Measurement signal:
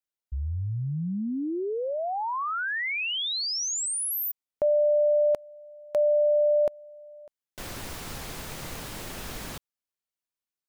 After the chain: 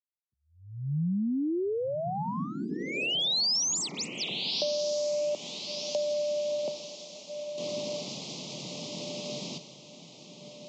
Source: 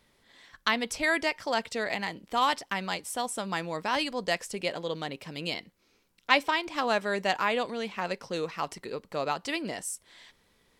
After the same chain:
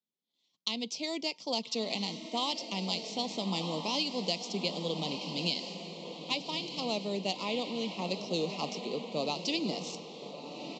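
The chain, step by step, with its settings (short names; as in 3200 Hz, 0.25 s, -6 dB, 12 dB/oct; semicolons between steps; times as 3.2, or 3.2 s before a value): median filter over 5 samples; steep high-pass 160 Hz 36 dB/oct; downsampling 16000 Hz; bell 720 Hz -10 dB 2.5 oct; AGC gain up to 16.5 dB; Butterworth band-stop 1600 Hz, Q 0.84; on a send: diffused feedback echo 1.306 s, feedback 51%, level -7.5 dB; on the sum: dynamic EQ 5000 Hz, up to +4 dB, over -36 dBFS, Q 2.7; compressor 12:1, threshold -19 dBFS; three-band expander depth 40%; gain -8 dB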